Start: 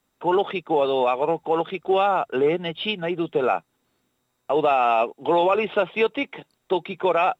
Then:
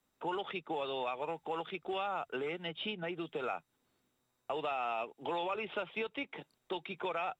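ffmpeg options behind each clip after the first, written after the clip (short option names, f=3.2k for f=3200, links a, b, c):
-filter_complex "[0:a]acrossover=split=120|1200|4400[a][b][c][d];[a]acompressor=threshold=-56dB:ratio=4[e];[b]acompressor=threshold=-32dB:ratio=4[f];[c]acompressor=threshold=-32dB:ratio=4[g];[d]acompressor=threshold=-57dB:ratio=4[h];[e][f][g][h]amix=inputs=4:normalize=0,volume=-7dB"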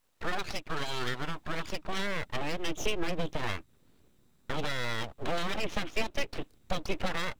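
-af "asubboost=boost=11.5:cutoff=170,aeval=exprs='abs(val(0))':c=same,volume=7.5dB"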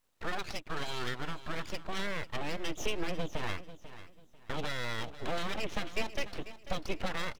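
-af "aecho=1:1:493|986|1479:0.188|0.0527|0.0148,volume=-3dB"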